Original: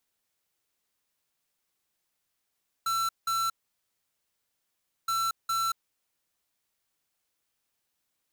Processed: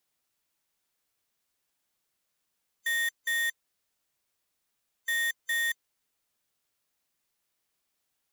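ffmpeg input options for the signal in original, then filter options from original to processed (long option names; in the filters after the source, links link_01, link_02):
-f lavfi -i "aevalsrc='0.0398*(2*lt(mod(1340*t,1),0.5)-1)*clip(min(mod(mod(t,2.22),0.41),0.23-mod(mod(t,2.22),0.41))/0.005,0,1)*lt(mod(t,2.22),0.82)':duration=4.44:sample_rate=44100"
-af "afftfilt=real='real(if(lt(b,1008),b+24*(1-2*mod(floor(b/24),2)),b),0)':imag='imag(if(lt(b,1008),b+24*(1-2*mod(floor(b/24),2)),b),0)':win_size=2048:overlap=0.75"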